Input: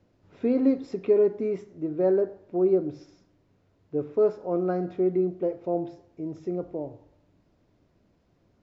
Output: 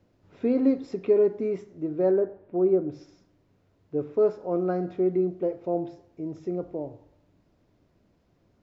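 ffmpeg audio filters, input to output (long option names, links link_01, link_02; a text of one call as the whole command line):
ffmpeg -i in.wav -filter_complex "[0:a]asettb=1/sr,asplit=3[link_01][link_02][link_03];[link_01]atrim=end=2.114[link_04];[link_02]atrim=start=2.11:end=2.92,asetpts=PTS-STARTPTS,afade=type=in:duration=0.004:curve=qsin,afade=type=out:start_time=0.806:duration=0.004:curve=qsin,lowpass=2400[link_05];[link_03]atrim=start=2.916[link_06];[link_04][link_05]acrossfade=duration=0.004:curve1=hsin:curve2=qsin[link_07];[link_07][link_06]acrossfade=duration=0.004:curve1=qsin:curve2=hsin" out.wav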